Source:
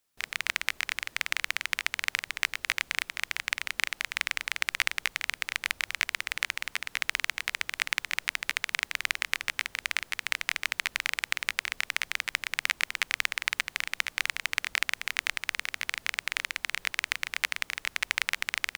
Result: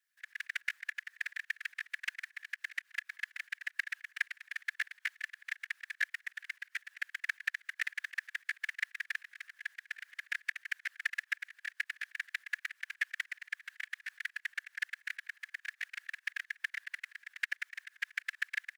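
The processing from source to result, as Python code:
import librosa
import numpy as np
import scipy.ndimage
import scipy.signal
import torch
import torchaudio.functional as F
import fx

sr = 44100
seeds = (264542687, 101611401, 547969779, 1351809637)

y = fx.auto_swell(x, sr, attack_ms=137.0)
y = fx.whisperise(y, sr, seeds[0])
y = fx.ladder_highpass(y, sr, hz=1600.0, resonance_pct=80)
y = y * 10.0 ** (2.5 / 20.0)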